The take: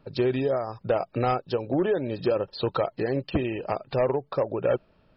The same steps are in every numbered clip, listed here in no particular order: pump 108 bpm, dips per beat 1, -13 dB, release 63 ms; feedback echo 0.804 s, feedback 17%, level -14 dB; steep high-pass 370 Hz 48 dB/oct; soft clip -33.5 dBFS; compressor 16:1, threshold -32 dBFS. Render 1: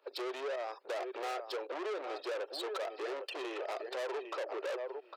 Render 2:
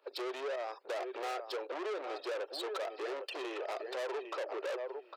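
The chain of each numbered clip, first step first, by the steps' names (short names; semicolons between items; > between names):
feedback echo > pump > soft clip > steep high-pass > compressor; pump > feedback echo > soft clip > steep high-pass > compressor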